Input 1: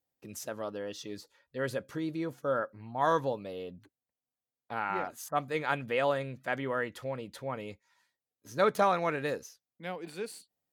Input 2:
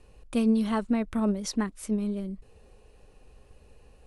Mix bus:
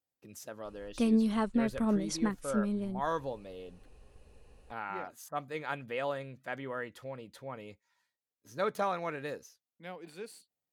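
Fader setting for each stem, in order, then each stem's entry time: -6.0 dB, -3.0 dB; 0.00 s, 0.65 s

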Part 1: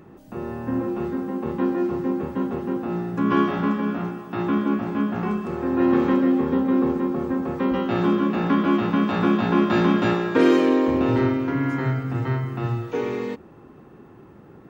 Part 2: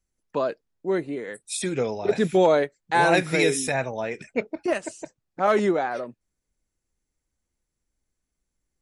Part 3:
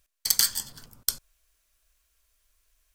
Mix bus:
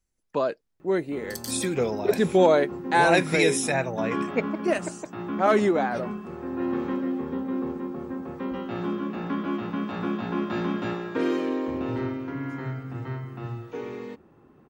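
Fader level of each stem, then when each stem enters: -9.0 dB, 0.0 dB, -16.0 dB; 0.80 s, 0.00 s, 1.05 s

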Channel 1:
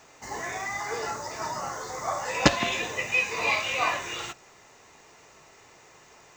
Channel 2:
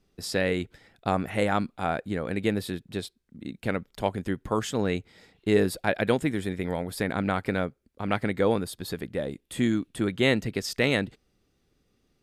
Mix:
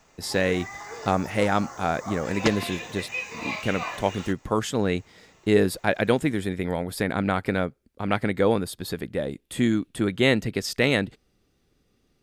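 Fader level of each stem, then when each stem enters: -6.5 dB, +2.5 dB; 0.00 s, 0.00 s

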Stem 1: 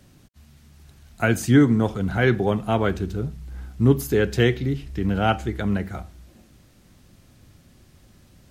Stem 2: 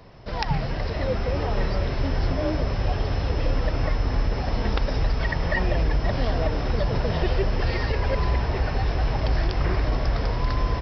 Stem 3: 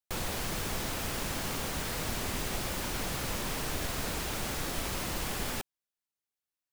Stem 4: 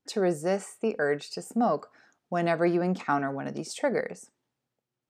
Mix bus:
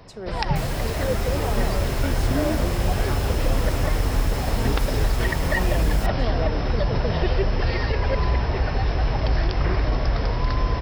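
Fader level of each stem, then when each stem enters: -13.5 dB, +1.5 dB, -0.5 dB, -9.5 dB; 0.80 s, 0.00 s, 0.45 s, 0.00 s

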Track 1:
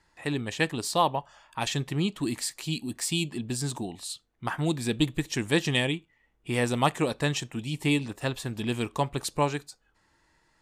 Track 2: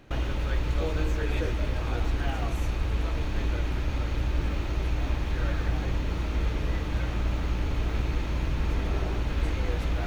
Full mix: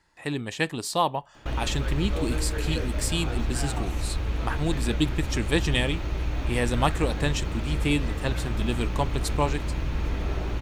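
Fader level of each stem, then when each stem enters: 0.0 dB, -0.5 dB; 0.00 s, 1.35 s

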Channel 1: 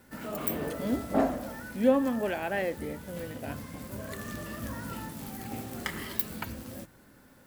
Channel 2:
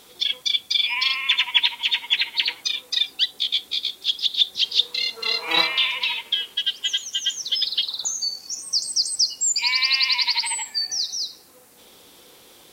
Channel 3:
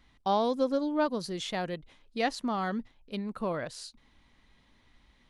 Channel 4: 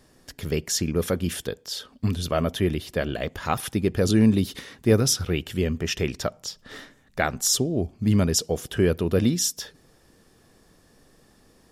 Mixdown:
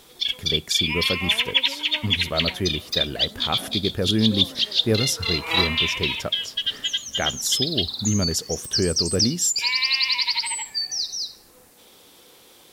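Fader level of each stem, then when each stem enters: -15.5 dB, -1.5 dB, -13.0 dB, -2.5 dB; 2.45 s, 0.00 s, 0.95 s, 0.00 s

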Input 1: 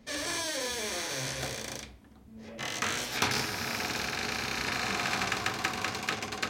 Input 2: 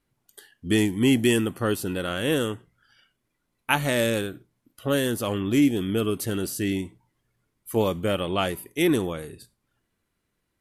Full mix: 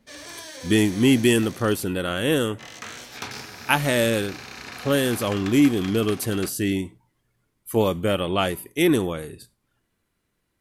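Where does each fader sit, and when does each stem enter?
-6.0 dB, +2.5 dB; 0.00 s, 0.00 s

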